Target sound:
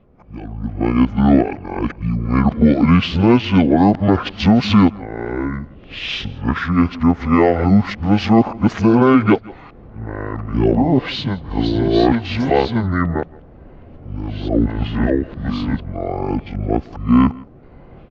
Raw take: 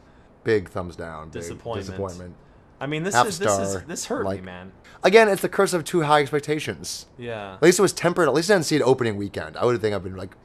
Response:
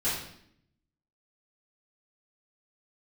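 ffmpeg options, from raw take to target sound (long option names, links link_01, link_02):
-af "areverse,lowpass=4600,bandreject=frequency=1600:width=7.5,alimiter=limit=-10.5dB:level=0:latency=1:release=122,dynaudnorm=framelen=200:gausssize=3:maxgain=14dB,aecho=1:1:96:0.0708,asetrate=25442,aresample=44100,volume=-1dB"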